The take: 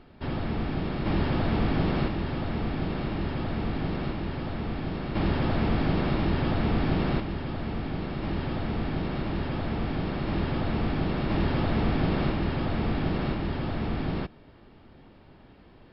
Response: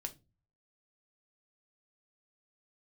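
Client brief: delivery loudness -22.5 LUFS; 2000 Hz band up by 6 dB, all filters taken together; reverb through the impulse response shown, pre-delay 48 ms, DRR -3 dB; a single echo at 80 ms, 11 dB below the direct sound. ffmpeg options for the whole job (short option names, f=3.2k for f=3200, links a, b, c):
-filter_complex "[0:a]equalizer=f=2k:t=o:g=7.5,aecho=1:1:80:0.282,asplit=2[a][b];[1:a]atrim=start_sample=2205,adelay=48[c];[b][c]afir=irnorm=-1:irlink=0,volume=5dB[d];[a][d]amix=inputs=2:normalize=0,volume=0.5dB"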